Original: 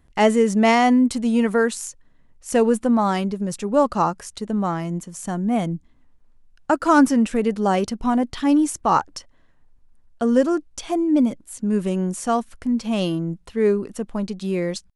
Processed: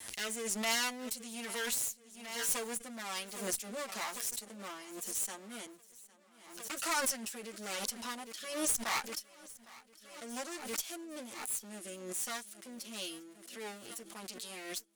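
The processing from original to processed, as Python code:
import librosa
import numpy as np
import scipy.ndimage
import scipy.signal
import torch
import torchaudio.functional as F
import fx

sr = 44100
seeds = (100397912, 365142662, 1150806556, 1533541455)

p1 = fx.lower_of_two(x, sr, delay_ms=8.9)
p2 = fx.rotary(p1, sr, hz=1.1)
p3 = np.clip(p2, -10.0 ** (-20.0 / 20.0), 10.0 ** (-20.0 / 20.0))
p4 = p2 + (p3 * 10.0 ** (-5.0 / 20.0))
p5 = np.diff(p4, prepend=0.0)
p6 = fx.tube_stage(p5, sr, drive_db=19.0, bias=0.45)
p7 = p6 + fx.echo_feedback(p6, sr, ms=807, feedback_pct=58, wet_db=-21.0, dry=0)
y = fx.pre_swell(p7, sr, db_per_s=65.0)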